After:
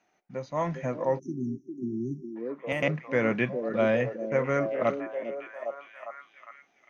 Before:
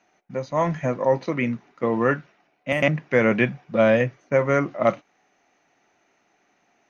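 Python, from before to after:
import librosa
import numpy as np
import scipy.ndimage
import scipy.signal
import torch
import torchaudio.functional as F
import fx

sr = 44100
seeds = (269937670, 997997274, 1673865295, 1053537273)

y = fx.echo_stepped(x, sr, ms=404, hz=350.0, octaves=0.7, feedback_pct=70, wet_db=-3.5)
y = fx.spec_erase(y, sr, start_s=1.19, length_s=1.17, low_hz=400.0, high_hz=5300.0)
y = y * librosa.db_to_amplitude(-7.0)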